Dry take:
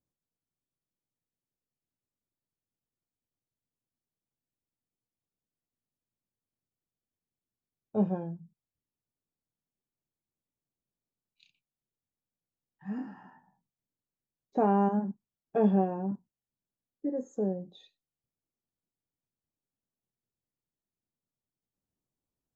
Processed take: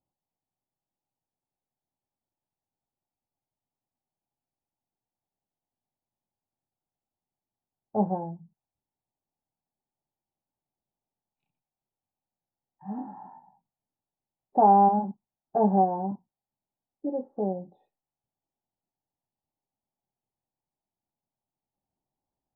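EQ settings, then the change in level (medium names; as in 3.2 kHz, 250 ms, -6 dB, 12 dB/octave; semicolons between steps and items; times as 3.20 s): resonant low-pass 830 Hz, resonance Q 4.9; distance through air 220 m; band-stop 470 Hz, Q 12; 0.0 dB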